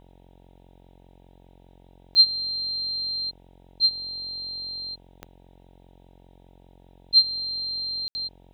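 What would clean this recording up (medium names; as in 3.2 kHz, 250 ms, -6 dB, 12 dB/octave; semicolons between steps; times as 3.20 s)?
de-click; de-hum 45 Hz, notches 21; room tone fill 8.08–8.15 s; noise print and reduce 25 dB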